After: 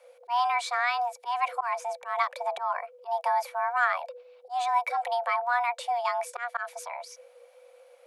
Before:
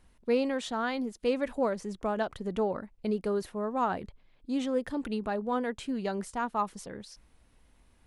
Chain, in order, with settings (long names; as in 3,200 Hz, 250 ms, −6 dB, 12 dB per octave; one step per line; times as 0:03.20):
frequency shifter +480 Hz
volume swells 129 ms
hollow resonant body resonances 400/2,300 Hz, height 14 dB, ringing for 50 ms
level +3.5 dB